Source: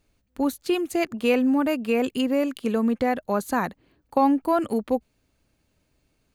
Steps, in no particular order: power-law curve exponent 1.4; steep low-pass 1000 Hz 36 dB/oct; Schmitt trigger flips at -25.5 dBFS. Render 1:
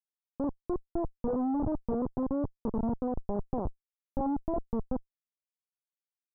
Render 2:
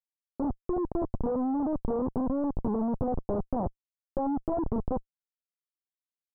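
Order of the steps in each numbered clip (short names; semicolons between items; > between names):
power-law curve > Schmitt trigger > steep low-pass; Schmitt trigger > power-law curve > steep low-pass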